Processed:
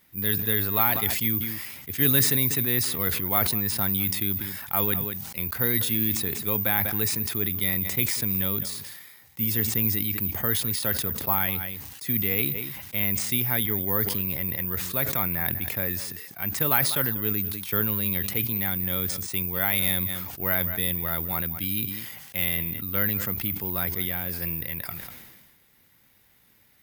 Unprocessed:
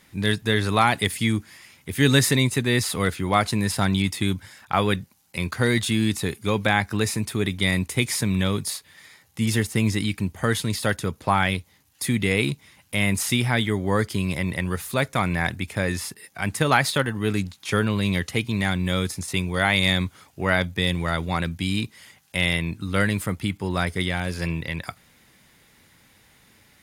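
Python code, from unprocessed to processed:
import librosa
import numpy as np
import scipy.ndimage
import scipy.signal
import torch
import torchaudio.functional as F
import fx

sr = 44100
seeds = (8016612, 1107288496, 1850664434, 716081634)

y = x + 10.0 ** (-20.0 / 20.0) * np.pad(x, (int(195 * sr / 1000.0), 0))[:len(x)]
y = (np.kron(scipy.signal.resample_poly(y, 1, 3), np.eye(3)[0]) * 3)[:len(y)]
y = fx.sustainer(y, sr, db_per_s=40.0)
y = F.gain(torch.from_numpy(y), -8.5).numpy()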